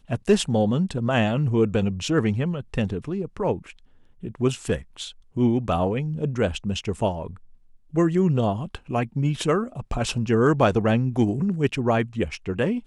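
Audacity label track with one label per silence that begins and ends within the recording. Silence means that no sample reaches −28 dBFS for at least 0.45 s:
3.560000	4.240000	silence
7.270000	7.940000	silence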